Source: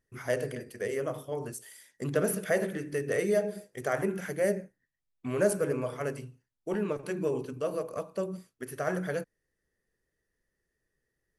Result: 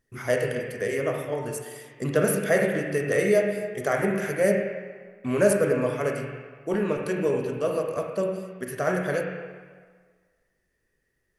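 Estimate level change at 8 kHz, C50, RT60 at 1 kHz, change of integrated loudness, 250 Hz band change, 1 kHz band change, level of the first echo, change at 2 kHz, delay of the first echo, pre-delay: +5.0 dB, 2.0 dB, 1.7 s, +6.0 dB, +6.0 dB, +6.5 dB, none, +7.5 dB, none, 27 ms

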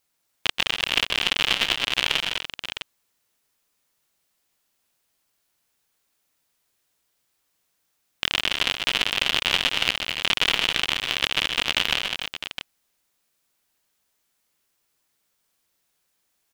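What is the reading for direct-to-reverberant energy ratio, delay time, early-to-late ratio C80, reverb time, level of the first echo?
none, 0.127 s, none, none, -11.0 dB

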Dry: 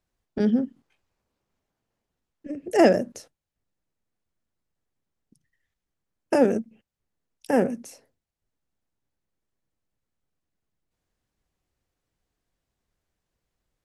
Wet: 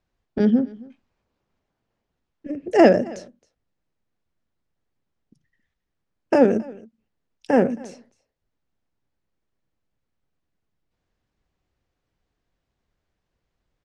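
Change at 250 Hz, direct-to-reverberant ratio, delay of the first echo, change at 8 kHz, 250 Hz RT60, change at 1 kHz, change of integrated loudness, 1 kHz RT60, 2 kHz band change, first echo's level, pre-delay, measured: +4.0 dB, none, 0.27 s, n/a, none, +3.5 dB, +3.5 dB, none, +3.0 dB, -22.5 dB, none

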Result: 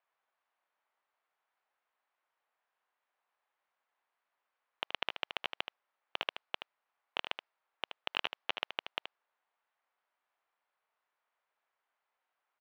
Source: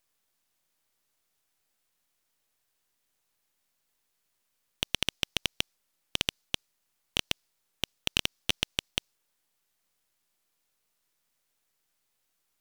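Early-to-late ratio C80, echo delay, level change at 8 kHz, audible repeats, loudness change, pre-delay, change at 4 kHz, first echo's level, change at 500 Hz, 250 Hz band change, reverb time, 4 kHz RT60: none, 76 ms, -27.0 dB, 1, -7.5 dB, none, -9.0 dB, -8.5 dB, -2.5 dB, -14.5 dB, none, none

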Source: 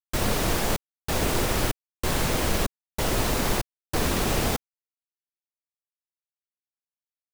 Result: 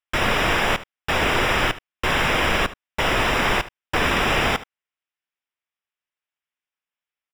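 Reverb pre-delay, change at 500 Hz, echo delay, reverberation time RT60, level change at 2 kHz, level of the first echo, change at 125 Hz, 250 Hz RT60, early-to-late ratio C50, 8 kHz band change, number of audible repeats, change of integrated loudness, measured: none, +4.0 dB, 74 ms, none, +11.5 dB, -17.0 dB, 0.0 dB, none, none, -4.5 dB, 1, +5.5 dB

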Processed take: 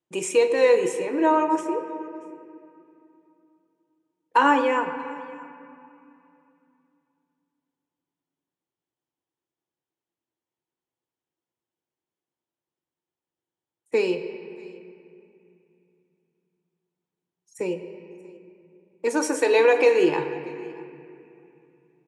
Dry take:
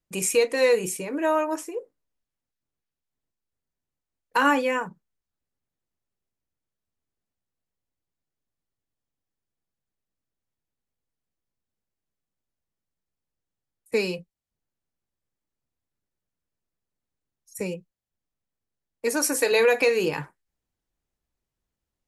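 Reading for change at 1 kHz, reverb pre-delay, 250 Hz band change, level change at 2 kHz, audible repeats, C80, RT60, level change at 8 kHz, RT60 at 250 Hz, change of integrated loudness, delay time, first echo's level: +5.0 dB, 4 ms, +4.0 dB, -0.5 dB, 1, 9.5 dB, 2.7 s, -6.0 dB, 3.9 s, +1.5 dB, 0.634 s, -23.5 dB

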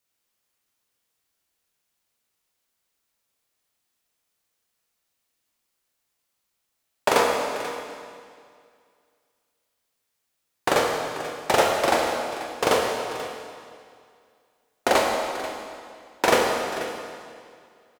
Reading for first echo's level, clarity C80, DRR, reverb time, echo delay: -14.5 dB, 2.5 dB, -0.5 dB, 2.2 s, 0.487 s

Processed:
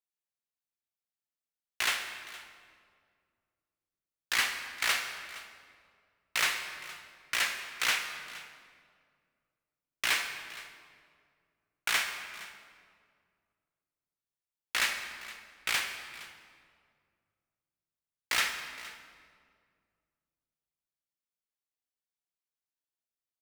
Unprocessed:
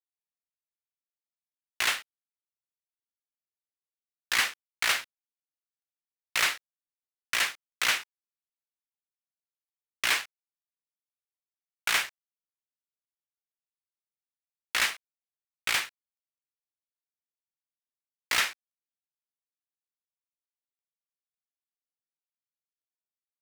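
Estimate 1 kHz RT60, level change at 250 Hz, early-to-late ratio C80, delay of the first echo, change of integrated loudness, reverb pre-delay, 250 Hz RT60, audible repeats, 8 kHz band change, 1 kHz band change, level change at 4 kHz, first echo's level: 1.9 s, -1.5 dB, 7.0 dB, 0.466 s, -3.5 dB, 39 ms, 2.5 s, 1, -2.5 dB, -2.0 dB, -2.5 dB, -18.5 dB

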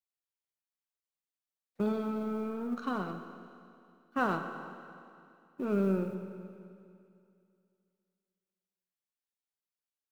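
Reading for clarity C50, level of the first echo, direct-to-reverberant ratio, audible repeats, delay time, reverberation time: 7.5 dB, none, 6.5 dB, none, none, 2.5 s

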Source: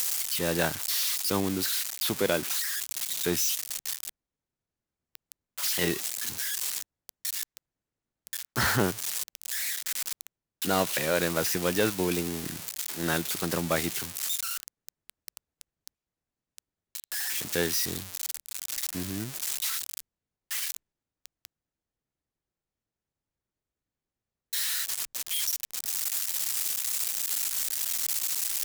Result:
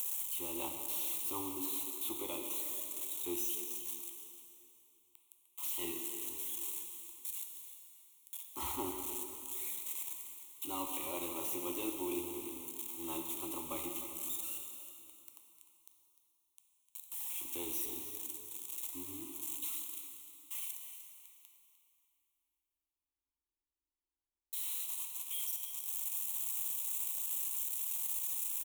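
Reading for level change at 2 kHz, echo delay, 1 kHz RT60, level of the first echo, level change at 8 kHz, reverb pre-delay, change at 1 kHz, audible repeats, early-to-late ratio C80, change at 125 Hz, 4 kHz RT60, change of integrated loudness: -19.5 dB, 0.302 s, 2.8 s, -13.5 dB, -10.5 dB, 5 ms, -11.0 dB, 1, 4.5 dB, -23.0 dB, 2.6 s, -9.0 dB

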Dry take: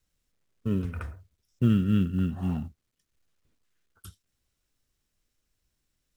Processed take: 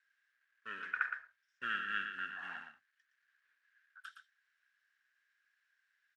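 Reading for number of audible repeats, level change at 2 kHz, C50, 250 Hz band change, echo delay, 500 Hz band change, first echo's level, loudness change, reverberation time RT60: 1, +12.0 dB, none, -34.0 dB, 0.116 s, -23.0 dB, -7.5 dB, -12.0 dB, none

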